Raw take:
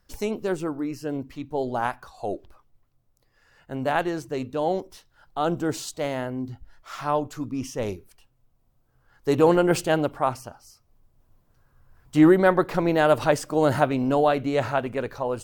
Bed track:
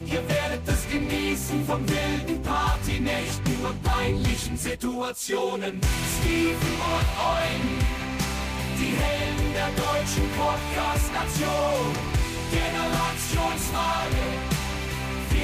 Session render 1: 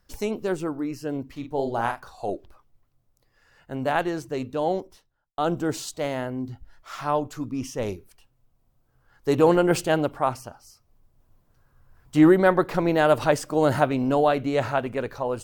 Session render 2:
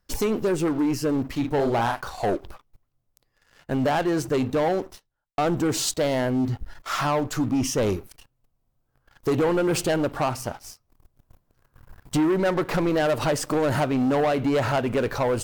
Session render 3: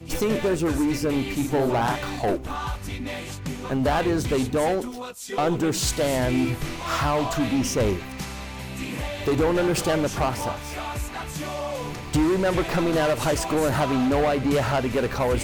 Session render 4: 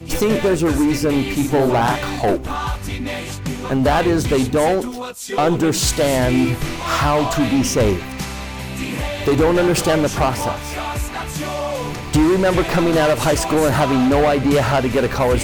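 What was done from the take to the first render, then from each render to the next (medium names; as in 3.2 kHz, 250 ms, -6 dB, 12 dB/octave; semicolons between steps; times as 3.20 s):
1.32–2.30 s: doubling 43 ms -6.5 dB; 4.67–5.38 s: studio fade out
compression 4:1, threshold -27 dBFS, peak gain reduction 13.5 dB; waveshaping leveller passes 3
add bed track -6 dB
trim +6.5 dB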